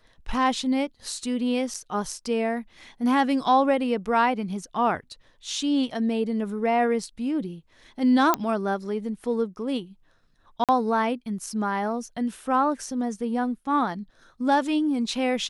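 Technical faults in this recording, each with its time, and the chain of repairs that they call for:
0:01.74: drop-out 4.6 ms
0:08.34: click −6 dBFS
0:10.64–0:10.69: drop-out 47 ms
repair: click removal
repair the gap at 0:01.74, 4.6 ms
repair the gap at 0:10.64, 47 ms

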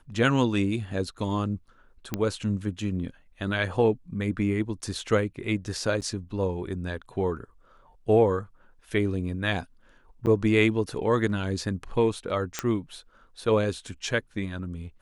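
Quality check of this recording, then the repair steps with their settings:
0:02.14: click −13 dBFS
0:06.01–0:06.02: drop-out 9.3 ms
0:10.26–0:10.27: drop-out 9.2 ms
0:12.59: click −10 dBFS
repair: click removal
repair the gap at 0:06.01, 9.3 ms
repair the gap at 0:10.26, 9.2 ms

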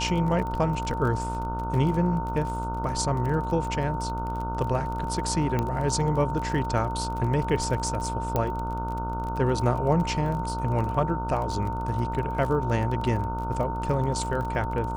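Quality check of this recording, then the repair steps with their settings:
mains buzz 60 Hz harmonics 25 −32 dBFS
surface crackle 30 per second −32 dBFS
whistle 910 Hz −31 dBFS
0:05.59: click −14 dBFS
0:08.36: click −12 dBFS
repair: click removal
hum removal 60 Hz, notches 25
notch filter 910 Hz, Q 30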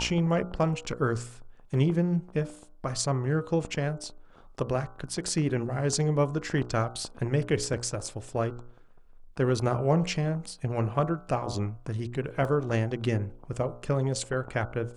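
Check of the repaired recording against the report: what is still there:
none of them is left

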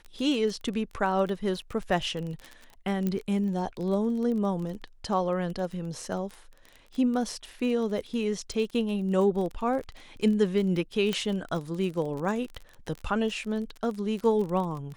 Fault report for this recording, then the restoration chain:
surface crackle 23 per second −33 dBFS
0:03.07: click −17 dBFS
0:11.13: click −14 dBFS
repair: click removal

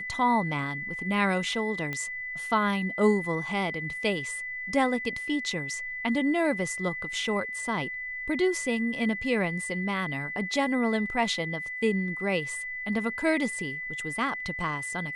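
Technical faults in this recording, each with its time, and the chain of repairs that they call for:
whistle 2,000 Hz −33 dBFS
0:01.93: click −19 dBFS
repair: click removal
notch filter 2,000 Hz, Q 30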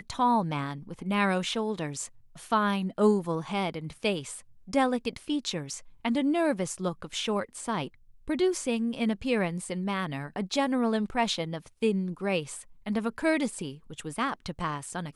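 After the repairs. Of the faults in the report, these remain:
none of them is left

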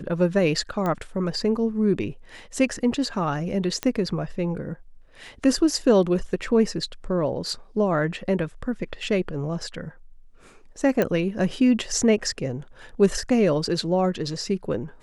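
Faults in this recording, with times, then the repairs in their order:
0:00.86: click −15 dBFS
0:03.83: click −10 dBFS
0:11.02: click −10 dBFS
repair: click removal

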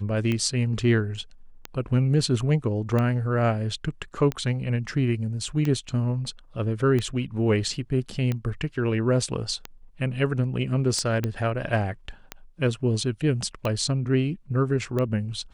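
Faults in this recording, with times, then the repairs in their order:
scratch tick 45 rpm −15 dBFS
0:11.24: click −14 dBFS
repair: click removal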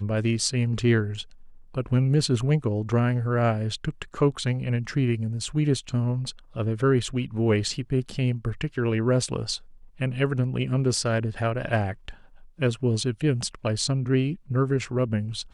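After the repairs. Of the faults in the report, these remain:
none of them is left

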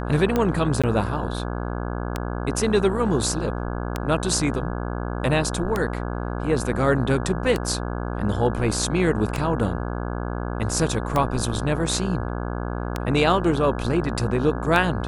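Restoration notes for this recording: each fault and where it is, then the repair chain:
mains buzz 60 Hz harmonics 28 −28 dBFS
scratch tick 33 1/3 rpm −9 dBFS
0:00.82–0:00.84: drop-out 16 ms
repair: click removal
hum removal 60 Hz, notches 28
repair the gap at 0:00.82, 16 ms

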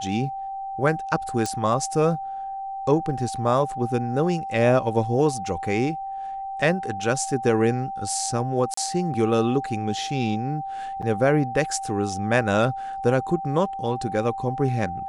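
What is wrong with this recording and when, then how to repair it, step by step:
whistle 780 Hz −29 dBFS
0:01.46: click −13 dBFS
0:08.74–0:08.77: drop-out 34 ms
0:11.02–0:11.03: drop-out 6 ms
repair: click removal
notch filter 780 Hz, Q 30
repair the gap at 0:08.74, 34 ms
repair the gap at 0:11.02, 6 ms

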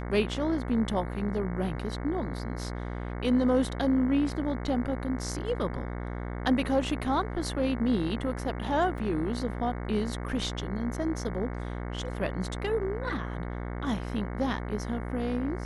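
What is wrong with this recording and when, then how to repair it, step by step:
mains buzz 60 Hz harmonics 37 −35 dBFS
0:08.98: drop-out 2.2 ms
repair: hum removal 60 Hz, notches 37
repair the gap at 0:08.98, 2.2 ms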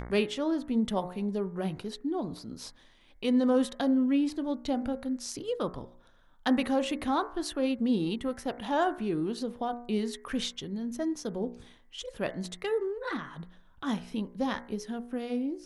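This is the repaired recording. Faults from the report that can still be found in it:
none of them is left

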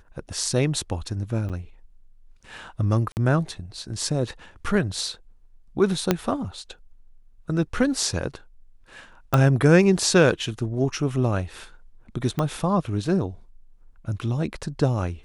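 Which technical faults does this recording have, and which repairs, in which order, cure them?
0:01.49–0:01.50: drop-out 7.5 ms
0:03.12–0:03.17: drop-out 49 ms
0:06.11: click −4 dBFS
0:09.34: click −8 dBFS
0:12.39: click −12 dBFS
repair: click removal
repair the gap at 0:01.49, 7.5 ms
repair the gap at 0:03.12, 49 ms

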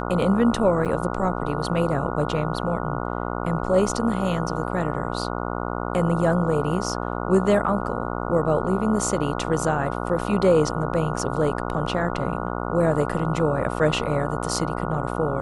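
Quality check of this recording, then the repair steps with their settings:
mains buzz 60 Hz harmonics 24 −28 dBFS
0:00.85–0:00.86: drop-out 7.4 ms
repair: hum removal 60 Hz, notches 24
repair the gap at 0:00.85, 7.4 ms

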